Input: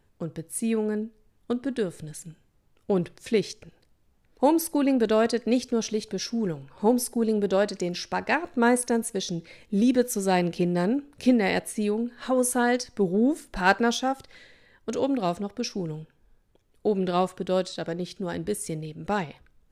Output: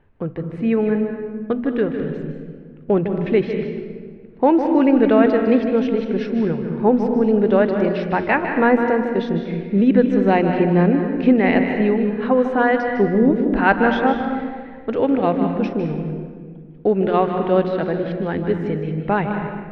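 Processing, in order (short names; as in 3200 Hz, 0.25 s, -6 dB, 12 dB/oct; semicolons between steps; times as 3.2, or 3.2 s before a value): LPF 2600 Hz 24 dB/oct; notches 60/120/180/240 Hz; in parallel at -2 dB: limiter -16.5 dBFS, peak gain reduction 10.5 dB; on the sum: reverb RT60 1.7 s, pre-delay 0.154 s, DRR 5 dB; gain +2.5 dB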